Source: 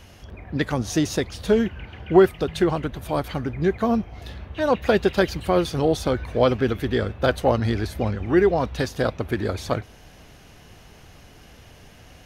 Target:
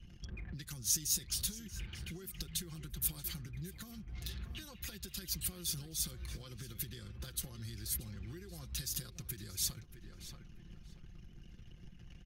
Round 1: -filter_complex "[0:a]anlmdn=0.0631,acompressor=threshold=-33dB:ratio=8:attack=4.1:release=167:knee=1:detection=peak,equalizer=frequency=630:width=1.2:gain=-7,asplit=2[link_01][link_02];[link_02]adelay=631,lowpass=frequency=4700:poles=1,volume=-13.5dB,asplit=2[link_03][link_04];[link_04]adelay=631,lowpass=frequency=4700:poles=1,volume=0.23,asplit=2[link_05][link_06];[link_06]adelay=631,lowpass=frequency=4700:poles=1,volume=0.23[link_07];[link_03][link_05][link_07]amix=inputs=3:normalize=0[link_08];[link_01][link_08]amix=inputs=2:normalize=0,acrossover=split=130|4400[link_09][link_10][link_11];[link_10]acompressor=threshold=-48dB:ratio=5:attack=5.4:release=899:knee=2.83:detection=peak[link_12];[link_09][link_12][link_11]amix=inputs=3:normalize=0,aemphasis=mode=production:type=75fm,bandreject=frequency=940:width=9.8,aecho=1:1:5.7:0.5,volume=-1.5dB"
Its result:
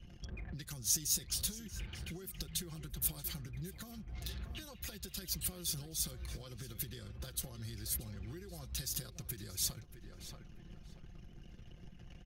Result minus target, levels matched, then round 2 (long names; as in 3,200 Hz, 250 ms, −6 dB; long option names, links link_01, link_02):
500 Hz band +2.5 dB
-filter_complex "[0:a]anlmdn=0.0631,acompressor=threshold=-33dB:ratio=8:attack=4.1:release=167:knee=1:detection=peak,equalizer=frequency=630:width=1.2:gain=-16,asplit=2[link_01][link_02];[link_02]adelay=631,lowpass=frequency=4700:poles=1,volume=-13.5dB,asplit=2[link_03][link_04];[link_04]adelay=631,lowpass=frequency=4700:poles=1,volume=0.23,asplit=2[link_05][link_06];[link_06]adelay=631,lowpass=frequency=4700:poles=1,volume=0.23[link_07];[link_03][link_05][link_07]amix=inputs=3:normalize=0[link_08];[link_01][link_08]amix=inputs=2:normalize=0,acrossover=split=130|4400[link_09][link_10][link_11];[link_10]acompressor=threshold=-48dB:ratio=5:attack=5.4:release=899:knee=2.83:detection=peak[link_12];[link_09][link_12][link_11]amix=inputs=3:normalize=0,aemphasis=mode=production:type=75fm,bandreject=frequency=940:width=9.8,aecho=1:1:5.7:0.5,volume=-1.5dB"